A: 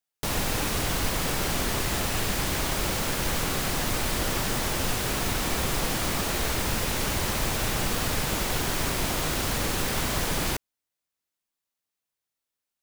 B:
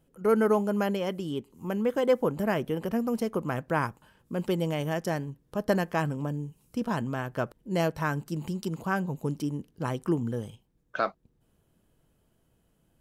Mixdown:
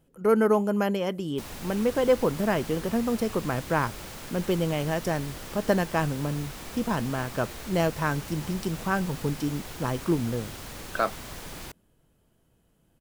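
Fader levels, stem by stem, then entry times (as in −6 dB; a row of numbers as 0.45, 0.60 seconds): −13.0, +2.0 decibels; 1.15, 0.00 seconds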